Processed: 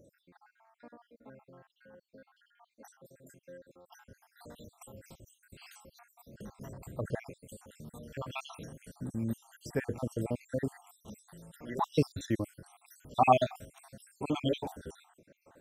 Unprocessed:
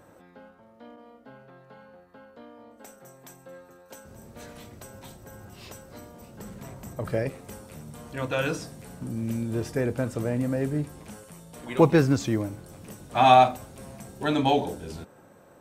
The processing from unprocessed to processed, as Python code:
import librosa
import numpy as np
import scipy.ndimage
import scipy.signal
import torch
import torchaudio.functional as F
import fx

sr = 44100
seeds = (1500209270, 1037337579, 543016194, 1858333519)

y = fx.spec_dropout(x, sr, seeds[0], share_pct=67)
y = fx.high_shelf(y, sr, hz=11000.0, db=-8.0, at=(2.49, 4.09))
y = y * librosa.db_to_amplitude(-3.5)